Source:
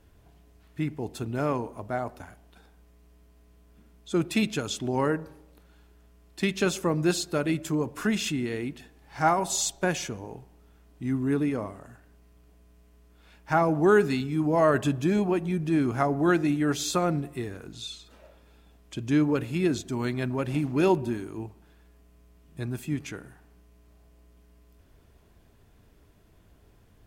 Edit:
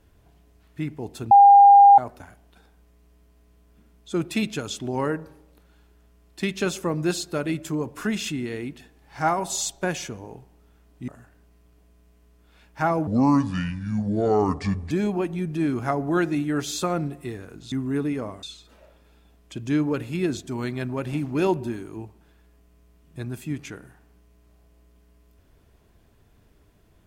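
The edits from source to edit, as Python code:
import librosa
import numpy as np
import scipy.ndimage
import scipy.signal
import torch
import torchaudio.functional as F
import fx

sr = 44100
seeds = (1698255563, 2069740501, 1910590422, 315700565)

y = fx.edit(x, sr, fx.bleep(start_s=1.31, length_s=0.67, hz=804.0, db=-7.5),
    fx.move(start_s=11.08, length_s=0.71, to_s=17.84),
    fx.speed_span(start_s=13.78, length_s=1.25, speed=0.68), tone=tone)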